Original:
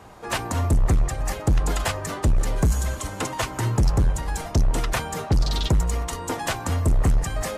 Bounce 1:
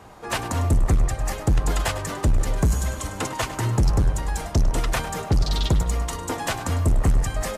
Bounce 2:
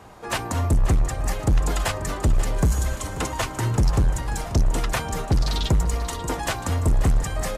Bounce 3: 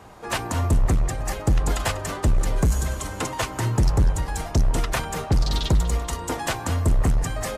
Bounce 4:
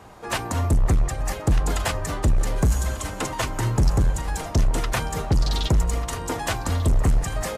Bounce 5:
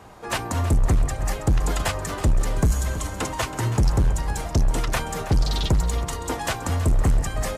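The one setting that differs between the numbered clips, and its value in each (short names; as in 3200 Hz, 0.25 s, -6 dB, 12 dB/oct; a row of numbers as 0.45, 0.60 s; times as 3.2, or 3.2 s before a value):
feedback echo, time: 0.102, 0.537, 0.195, 1.192, 0.325 s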